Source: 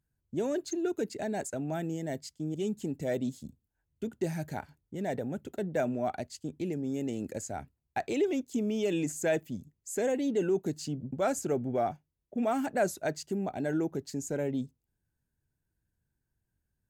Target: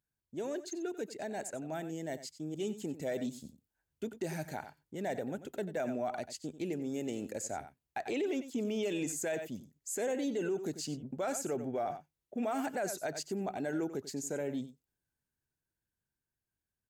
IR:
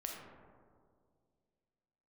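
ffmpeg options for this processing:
-filter_complex "[0:a]aecho=1:1:92:0.2,asettb=1/sr,asplit=3[a][b][c];[a]atrim=end=8.094[d];[b]atrim=start=8.09:end=8.83,asetpts=PTS-STARTPTS,afade=t=in:d=0.004:c=qsin,afade=t=out:st=0.736:d=0.004:c=qsin,acrossover=split=4200[e][f];[f]acompressor=threshold=-53dB:ratio=4:attack=1:release=60[g];[e][g]amix=inputs=2:normalize=0[h];[c]atrim=start=8.826[i];[d][h]acrossfade=d=0.004:c1=hsin:c2=qsin[j];[j][i]acrossfade=d=0.004:c1=qsin:c2=hsin,lowshelf=f=230:g=-11,dynaudnorm=f=340:g=13:m=5dB,alimiter=limit=-23dB:level=0:latency=1:release=32,volume=-4dB"

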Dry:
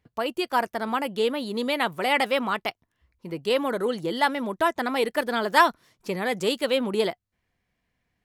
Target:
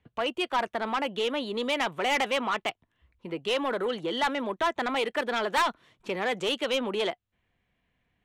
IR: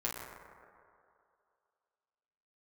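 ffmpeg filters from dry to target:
-filter_complex "[0:a]lowpass=3.7k,acrossover=split=270|670|2800[a][b][c][d];[a]acompressor=threshold=-46dB:ratio=6[e];[b]alimiter=level_in=3dB:limit=-24dB:level=0:latency=1,volume=-3dB[f];[e][f][c][d]amix=inputs=4:normalize=0,aexciter=amount=1.5:drive=2.4:freq=2.7k,asoftclip=type=tanh:threshold=-22dB,volume=1.5dB"

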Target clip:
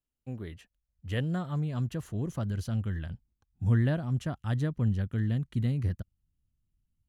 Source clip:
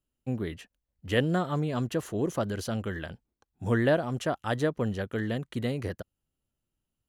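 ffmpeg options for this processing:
-af "asubboost=boost=9.5:cutoff=160,volume=-8dB"

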